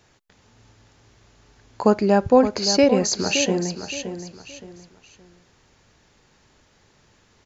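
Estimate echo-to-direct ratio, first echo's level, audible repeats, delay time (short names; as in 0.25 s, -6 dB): -9.0 dB, -9.5 dB, 3, 0.57 s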